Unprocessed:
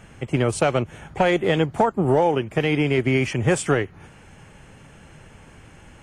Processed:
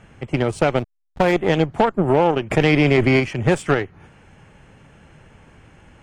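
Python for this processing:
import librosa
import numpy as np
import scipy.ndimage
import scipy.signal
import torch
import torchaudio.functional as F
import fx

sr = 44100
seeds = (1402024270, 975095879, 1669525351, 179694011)

y = fx.lowpass(x, sr, hz=3900.0, slope=6)
y = fx.cheby_harmonics(y, sr, harmonics=(4, 7), levels_db=(-18, -27), full_scale_db=-7.5)
y = fx.backlash(y, sr, play_db=-24.5, at=(0.77, 1.32), fade=0.02)
y = fx.env_flatten(y, sr, amount_pct=70, at=(2.5, 3.19), fade=0.02)
y = y * 10.0 ** (2.0 / 20.0)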